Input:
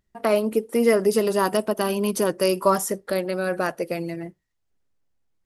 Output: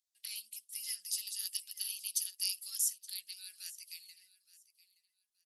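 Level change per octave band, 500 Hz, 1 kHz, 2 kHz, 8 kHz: under -40 dB, under -40 dB, -23.5 dB, -2.0 dB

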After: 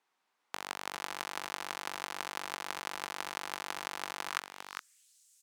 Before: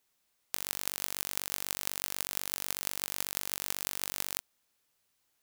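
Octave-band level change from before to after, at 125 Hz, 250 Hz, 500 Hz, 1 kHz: -8.5, -0.5, +2.0, +7.5 dB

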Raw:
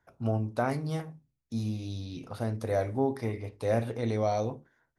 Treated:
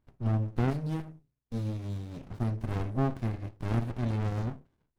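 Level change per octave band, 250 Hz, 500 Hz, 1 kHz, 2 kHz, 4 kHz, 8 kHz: -0.5 dB, -9.0 dB, -5.5 dB, -4.0 dB, -4.5 dB, n/a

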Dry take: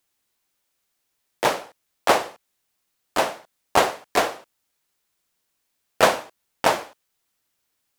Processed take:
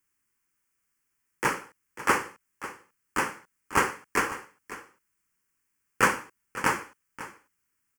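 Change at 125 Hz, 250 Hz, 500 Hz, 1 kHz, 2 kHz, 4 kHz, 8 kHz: -0.5, -2.5, -11.0, -5.5, -0.5, -11.0, -3.5 dB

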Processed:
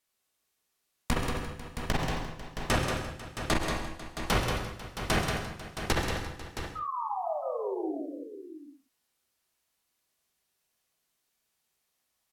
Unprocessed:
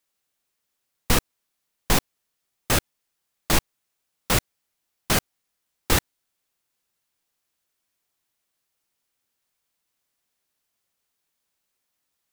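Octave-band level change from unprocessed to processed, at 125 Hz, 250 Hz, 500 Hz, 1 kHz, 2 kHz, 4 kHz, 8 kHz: -3.0, -2.0, -0.5, -0.5, -3.5, -6.5, -11.0 dB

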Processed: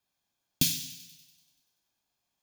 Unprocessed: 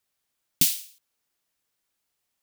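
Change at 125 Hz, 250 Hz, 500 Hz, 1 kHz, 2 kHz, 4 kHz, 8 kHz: +4.0 dB, +3.0 dB, -0.5 dB, n/a, -2.0 dB, -1.0 dB, -4.5 dB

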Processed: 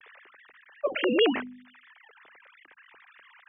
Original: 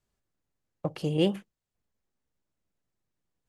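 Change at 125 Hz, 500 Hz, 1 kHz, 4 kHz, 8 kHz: under -20 dB, +5.5 dB, +8.0 dB, +8.0 dB, under -25 dB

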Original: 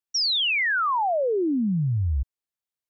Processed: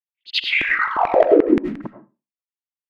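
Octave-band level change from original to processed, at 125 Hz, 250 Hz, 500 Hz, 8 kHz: -15.5 dB, +5.5 dB, +9.5 dB, n/a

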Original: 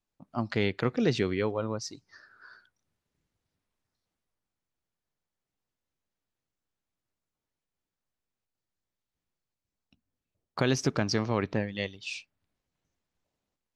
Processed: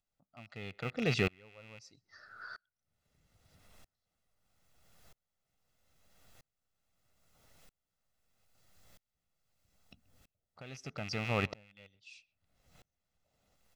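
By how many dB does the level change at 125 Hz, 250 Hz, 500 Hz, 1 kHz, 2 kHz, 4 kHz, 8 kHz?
-7.0, -10.5, -10.0, -7.5, -4.0, -7.0, -13.0 dB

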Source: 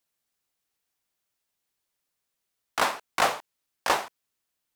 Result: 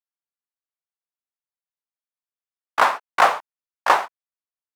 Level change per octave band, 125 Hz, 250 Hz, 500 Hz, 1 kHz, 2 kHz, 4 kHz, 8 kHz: n/a, +0.5 dB, +5.5 dB, +9.0 dB, +7.0 dB, +1.0 dB, -2.5 dB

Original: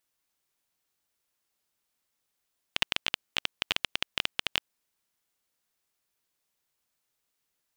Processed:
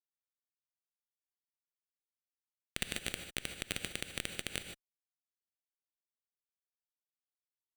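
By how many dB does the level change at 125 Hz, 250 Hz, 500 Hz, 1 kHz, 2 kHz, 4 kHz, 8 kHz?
+2.0, +1.0, -2.5, -12.0, -8.0, -11.0, +2.0 dB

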